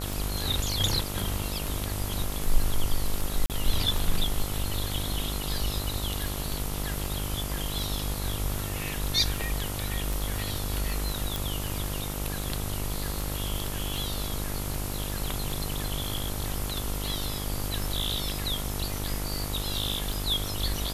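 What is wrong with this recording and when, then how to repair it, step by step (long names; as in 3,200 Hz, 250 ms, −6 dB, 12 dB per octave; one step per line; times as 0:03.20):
mains buzz 50 Hz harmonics 28 −34 dBFS
scratch tick 78 rpm
0:03.46–0:03.50: drop-out 38 ms
0:11.36: click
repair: click removal
hum removal 50 Hz, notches 28
repair the gap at 0:03.46, 38 ms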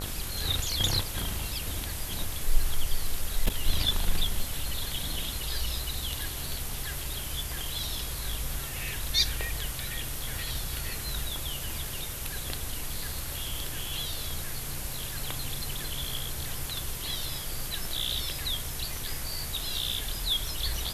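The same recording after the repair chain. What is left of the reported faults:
none of them is left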